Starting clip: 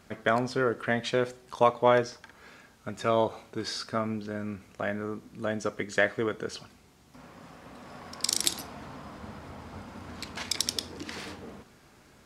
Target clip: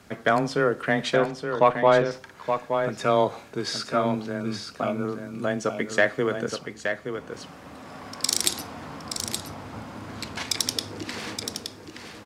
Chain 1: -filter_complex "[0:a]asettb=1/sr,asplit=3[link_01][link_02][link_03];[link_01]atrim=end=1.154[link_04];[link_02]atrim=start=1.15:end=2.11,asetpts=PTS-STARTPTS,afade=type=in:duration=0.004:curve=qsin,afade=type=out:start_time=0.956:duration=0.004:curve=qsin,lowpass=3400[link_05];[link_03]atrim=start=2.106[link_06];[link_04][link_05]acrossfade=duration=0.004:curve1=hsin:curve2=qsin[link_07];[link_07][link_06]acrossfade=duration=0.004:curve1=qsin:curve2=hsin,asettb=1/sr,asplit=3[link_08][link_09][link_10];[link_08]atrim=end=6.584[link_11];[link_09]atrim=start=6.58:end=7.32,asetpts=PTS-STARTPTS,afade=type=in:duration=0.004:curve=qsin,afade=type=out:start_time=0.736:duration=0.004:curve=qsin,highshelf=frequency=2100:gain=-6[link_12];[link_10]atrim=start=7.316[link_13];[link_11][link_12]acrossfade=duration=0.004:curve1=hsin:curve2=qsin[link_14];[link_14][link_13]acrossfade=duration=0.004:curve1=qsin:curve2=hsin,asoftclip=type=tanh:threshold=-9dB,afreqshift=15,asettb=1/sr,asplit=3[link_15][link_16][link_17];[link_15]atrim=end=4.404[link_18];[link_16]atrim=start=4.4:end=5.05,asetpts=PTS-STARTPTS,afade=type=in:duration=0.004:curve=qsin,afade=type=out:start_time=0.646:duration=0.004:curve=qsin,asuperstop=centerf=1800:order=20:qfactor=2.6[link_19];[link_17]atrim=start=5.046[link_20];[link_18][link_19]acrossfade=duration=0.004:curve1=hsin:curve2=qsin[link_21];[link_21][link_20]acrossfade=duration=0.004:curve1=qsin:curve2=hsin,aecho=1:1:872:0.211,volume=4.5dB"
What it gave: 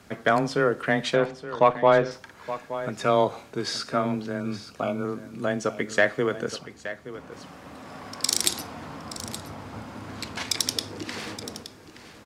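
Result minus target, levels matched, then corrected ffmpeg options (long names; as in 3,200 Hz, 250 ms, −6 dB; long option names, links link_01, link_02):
echo-to-direct −6.5 dB
-filter_complex "[0:a]asettb=1/sr,asplit=3[link_01][link_02][link_03];[link_01]atrim=end=1.154[link_04];[link_02]atrim=start=1.15:end=2.11,asetpts=PTS-STARTPTS,afade=type=in:duration=0.004:curve=qsin,afade=type=out:start_time=0.956:duration=0.004:curve=qsin,lowpass=3400[link_05];[link_03]atrim=start=2.106[link_06];[link_04][link_05]acrossfade=duration=0.004:curve1=hsin:curve2=qsin[link_07];[link_07][link_06]acrossfade=duration=0.004:curve1=qsin:curve2=hsin,asettb=1/sr,asplit=3[link_08][link_09][link_10];[link_08]atrim=end=6.584[link_11];[link_09]atrim=start=6.58:end=7.32,asetpts=PTS-STARTPTS,afade=type=in:duration=0.004:curve=qsin,afade=type=out:start_time=0.736:duration=0.004:curve=qsin,highshelf=frequency=2100:gain=-6[link_12];[link_10]atrim=start=7.316[link_13];[link_11][link_12]acrossfade=duration=0.004:curve1=hsin:curve2=qsin[link_14];[link_14][link_13]acrossfade=duration=0.004:curve1=qsin:curve2=hsin,asoftclip=type=tanh:threshold=-9dB,afreqshift=15,asettb=1/sr,asplit=3[link_15][link_16][link_17];[link_15]atrim=end=4.404[link_18];[link_16]atrim=start=4.4:end=5.05,asetpts=PTS-STARTPTS,afade=type=in:duration=0.004:curve=qsin,afade=type=out:start_time=0.646:duration=0.004:curve=qsin,asuperstop=centerf=1800:order=20:qfactor=2.6[link_19];[link_17]atrim=start=5.046[link_20];[link_18][link_19]acrossfade=duration=0.004:curve1=hsin:curve2=qsin[link_21];[link_21][link_20]acrossfade=duration=0.004:curve1=qsin:curve2=hsin,aecho=1:1:872:0.447,volume=4.5dB"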